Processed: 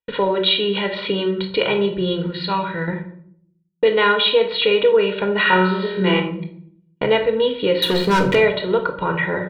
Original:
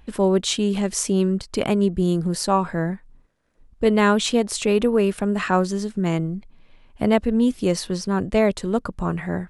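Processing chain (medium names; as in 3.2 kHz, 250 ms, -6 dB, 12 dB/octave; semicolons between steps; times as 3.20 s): high-pass 150 Hz 12 dB/octave; gate -38 dBFS, range -45 dB; steep low-pass 4 kHz 96 dB/octave; tilt shelf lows -5.5 dB, about 1.4 kHz; comb 2.1 ms, depth 96%; 2.26–2.88 s: peaking EQ 670 Hz -13 dB 2.3 oct; 7.82–8.35 s: waveshaping leveller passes 3; compression 2:1, threshold -28 dBFS, peak gain reduction 9 dB; 5.42–6.20 s: flutter echo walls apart 4.6 m, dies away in 0.61 s; simulated room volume 910 m³, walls furnished, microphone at 1.8 m; trim +8 dB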